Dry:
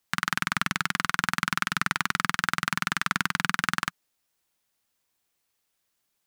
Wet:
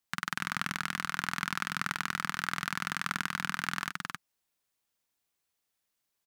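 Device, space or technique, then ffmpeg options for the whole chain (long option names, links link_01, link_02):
ducked delay: -filter_complex "[0:a]asplit=3[link_01][link_02][link_03];[link_02]adelay=267,volume=-4dB[link_04];[link_03]apad=whole_len=288013[link_05];[link_04][link_05]sidechaincompress=threshold=-30dB:ratio=3:attack=11:release=102[link_06];[link_01][link_06]amix=inputs=2:normalize=0,volume=-7dB"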